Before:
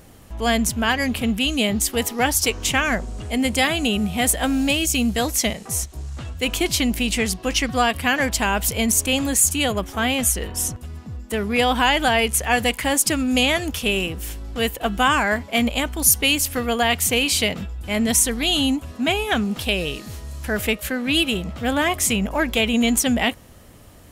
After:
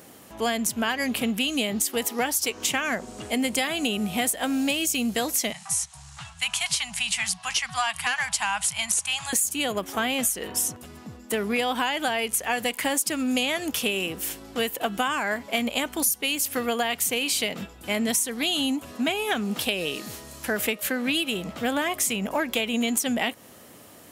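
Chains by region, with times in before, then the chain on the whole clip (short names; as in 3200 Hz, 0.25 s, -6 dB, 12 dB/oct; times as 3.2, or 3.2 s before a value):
5.52–9.33 Chebyshev band-stop 160–810 Hz, order 3 + hard clip -14 dBFS + careless resampling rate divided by 2×, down none, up filtered
whole clip: HPF 210 Hz 12 dB/oct; high shelf 9900 Hz +5 dB; compressor 6:1, threshold -23 dBFS; gain +1 dB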